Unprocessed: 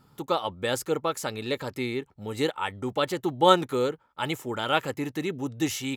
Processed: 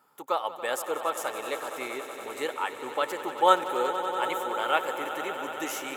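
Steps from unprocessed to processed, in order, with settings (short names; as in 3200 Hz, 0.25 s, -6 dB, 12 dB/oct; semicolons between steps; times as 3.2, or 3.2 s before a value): HPF 620 Hz 12 dB/oct; bell 4300 Hz -10.5 dB 1.2 oct; swelling echo 94 ms, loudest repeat 5, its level -14 dB; gain +1.5 dB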